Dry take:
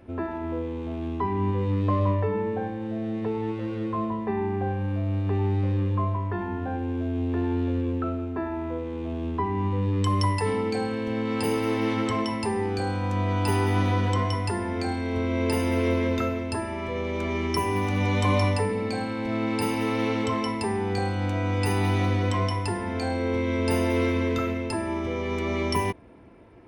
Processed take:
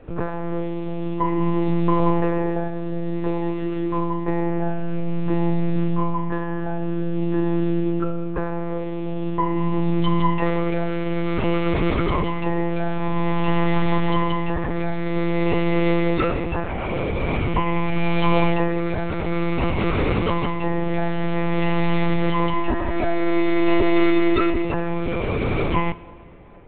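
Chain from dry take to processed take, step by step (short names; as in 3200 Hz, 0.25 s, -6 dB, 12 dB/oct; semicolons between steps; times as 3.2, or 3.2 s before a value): monotone LPC vocoder at 8 kHz 170 Hz; 22.53–24.65 comb 3.1 ms, depth 67%; plate-style reverb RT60 2.3 s, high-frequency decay 0.9×, DRR 17.5 dB; gain +5.5 dB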